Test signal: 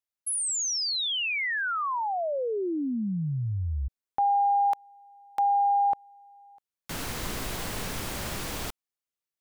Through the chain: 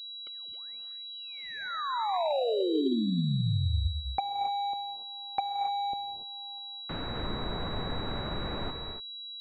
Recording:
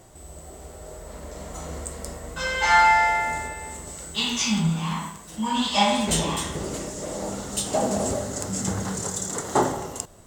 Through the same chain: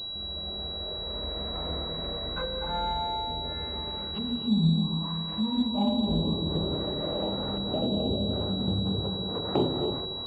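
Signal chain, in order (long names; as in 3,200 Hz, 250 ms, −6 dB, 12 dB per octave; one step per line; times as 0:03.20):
treble cut that deepens with the level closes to 390 Hz, closed at −24 dBFS
reverb whose tail is shaped and stops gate 310 ms rising, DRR 4.5 dB
switching amplifier with a slow clock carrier 3,900 Hz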